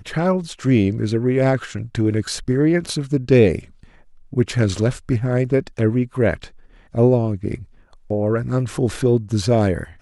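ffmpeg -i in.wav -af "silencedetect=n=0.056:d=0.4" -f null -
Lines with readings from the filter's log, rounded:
silence_start: 3.59
silence_end: 4.33 | silence_duration: 0.74
silence_start: 6.44
silence_end: 6.95 | silence_duration: 0.51
silence_start: 7.55
silence_end: 8.10 | silence_duration: 0.56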